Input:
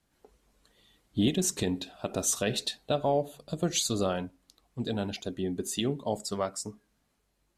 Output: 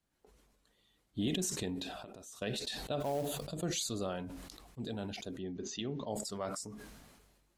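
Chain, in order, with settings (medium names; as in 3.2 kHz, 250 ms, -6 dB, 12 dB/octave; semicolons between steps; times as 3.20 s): 1.88–2.42 s: compression 12:1, threshold -41 dBFS, peak gain reduction 18 dB; 3.00–3.46 s: short-mantissa float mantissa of 2-bit; 5.39–6.10 s: elliptic low-pass 6.2 kHz, stop band 40 dB; decay stretcher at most 36 dB/s; trim -9 dB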